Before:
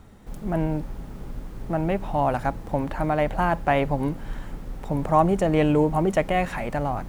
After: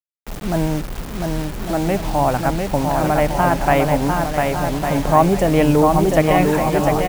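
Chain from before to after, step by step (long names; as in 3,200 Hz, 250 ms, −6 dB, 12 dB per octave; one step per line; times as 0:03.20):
bouncing-ball delay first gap 700 ms, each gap 0.65×, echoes 5
bit-depth reduction 6 bits, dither none
level +5 dB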